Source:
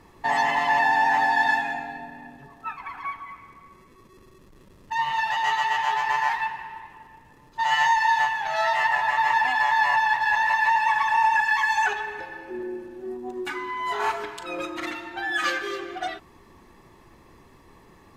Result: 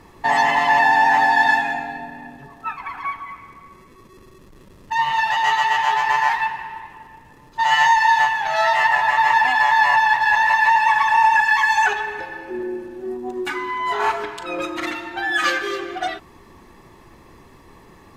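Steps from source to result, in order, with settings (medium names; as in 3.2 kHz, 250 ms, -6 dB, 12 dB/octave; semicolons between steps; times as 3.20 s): 13.78–14.62 s: treble shelf 4.9 kHz -5 dB; trim +5.5 dB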